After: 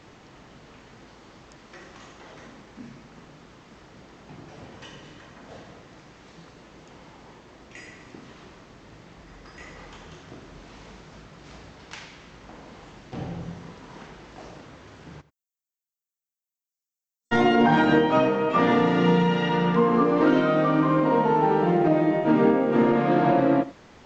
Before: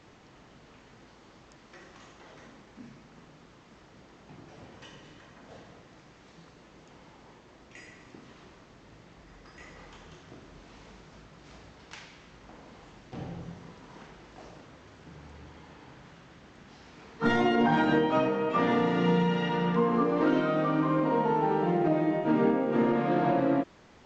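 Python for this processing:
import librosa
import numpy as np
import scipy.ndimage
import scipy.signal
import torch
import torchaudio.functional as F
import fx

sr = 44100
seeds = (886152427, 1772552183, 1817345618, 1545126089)

y = fx.cheby2_highpass(x, sr, hz=2800.0, order=4, stop_db=80, at=(15.2, 17.31), fade=0.02)
y = y + 10.0 ** (-18.0 / 20.0) * np.pad(y, (int(88 * sr / 1000.0), 0))[:len(y)]
y = y * 10.0 ** (5.5 / 20.0)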